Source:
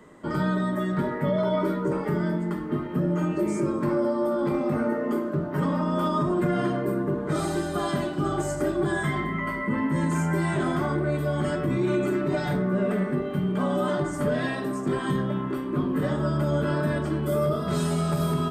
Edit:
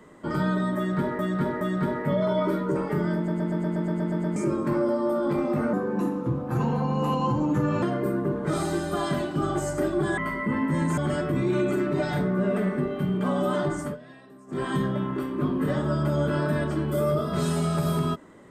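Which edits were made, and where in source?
0.77–1.19 loop, 3 plays
2.32 stutter in place 0.12 s, 10 plays
4.89–6.65 speed 84%
9–9.39 cut
10.19–11.32 cut
14.14–14.99 dip -20 dB, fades 0.18 s

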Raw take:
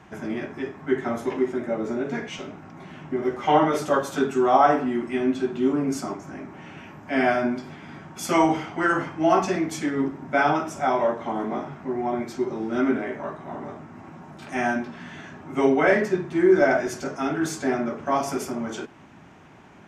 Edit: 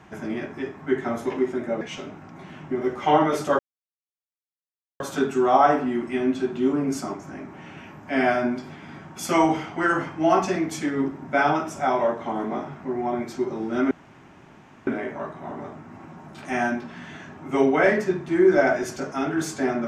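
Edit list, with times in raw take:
1.81–2.22 cut
4 insert silence 1.41 s
12.91 insert room tone 0.96 s

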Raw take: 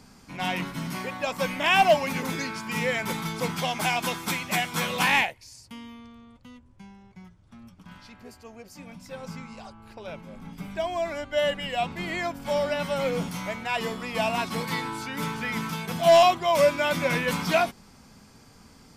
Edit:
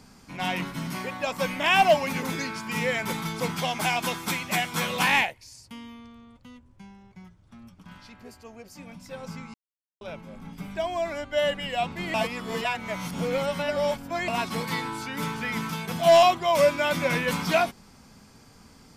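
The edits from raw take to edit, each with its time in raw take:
9.54–10.01 mute
12.14–14.28 reverse

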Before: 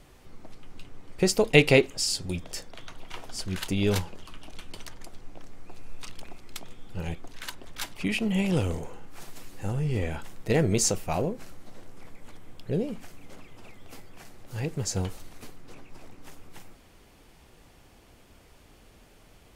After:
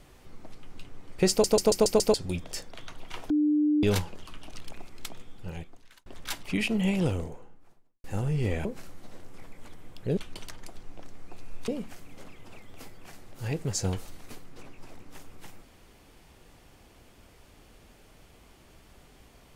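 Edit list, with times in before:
1.3 stutter in place 0.14 s, 6 plays
3.3–3.83 bleep 299 Hz -20.5 dBFS
4.55–6.06 move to 12.8
6.62–7.57 fade out
8.24–9.55 studio fade out
10.16–11.28 cut

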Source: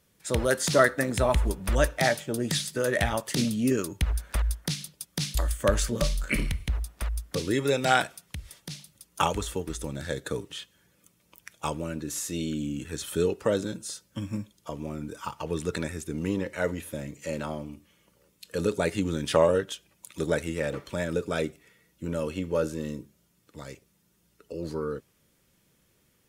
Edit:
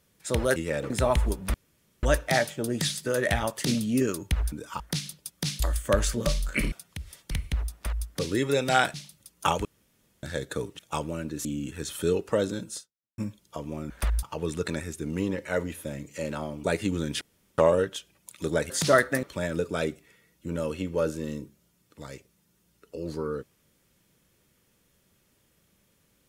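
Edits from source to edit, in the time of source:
0.56–1.09 swap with 20.46–20.8
1.73 insert room tone 0.49 s
4.22–4.55 swap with 15.03–15.31
8.1–8.69 move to 6.47
9.4–9.98 room tone
10.54–11.5 cut
12.16–12.58 cut
13.9–14.31 fade out exponential
17.72–18.77 cut
19.34 insert room tone 0.37 s

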